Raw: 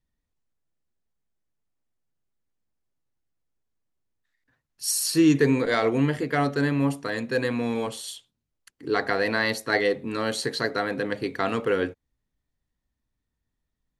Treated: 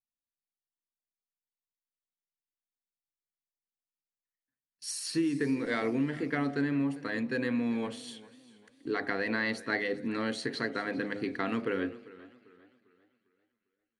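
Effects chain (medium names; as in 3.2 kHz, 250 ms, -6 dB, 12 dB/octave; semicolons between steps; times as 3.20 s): gate with hold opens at -34 dBFS; ten-band graphic EQ 250 Hz +10 dB, 2 kHz +6 dB, 8 kHz -10 dB; compression, threshold -17 dBFS, peak gain reduction 9.5 dB; treble shelf 7.2 kHz +9.5 dB; de-hum 51.19 Hz, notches 16; resampled via 22.05 kHz; feedback echo behind a high-pass 239 ms, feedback 65%, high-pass 2 kHz, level -24 dB; modulated delay 398 ms, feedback 38%, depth 85 cents, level -19.5 dB; trim -9 dB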